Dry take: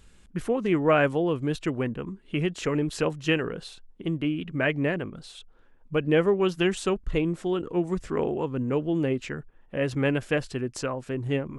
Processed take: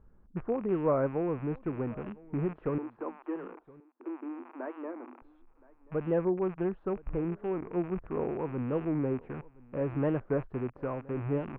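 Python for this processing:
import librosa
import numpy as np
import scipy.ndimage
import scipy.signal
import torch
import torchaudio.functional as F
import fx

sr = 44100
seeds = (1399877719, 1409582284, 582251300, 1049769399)

y = fx.rattle_buzz(x, sr, strikes_db=-42.0, level_db=-17.0)
y = scipy.signal.sosfilt(scipy.signal.butter(4, 1200.0, 'lowpass', fs=sr, output='sos'), y)
y = fx.rider(y, sr, range_db=4, speed_s=2.0)
y = fx.cheby_ripple_highpass(y, sr, hz=240.0, ripple_db=9, at=(2.78, 5.22))
y = y + 10.0 ** (-23.0 / 20.0) * np.pad(y, (int(1020 * sr / 1000.0), 0))[:len(y)]
y = fx.record_warp(y, sr, rpm=45.0, depth_cents=160.0)
y = y * 10.0 ** (-6.0 / 20.0)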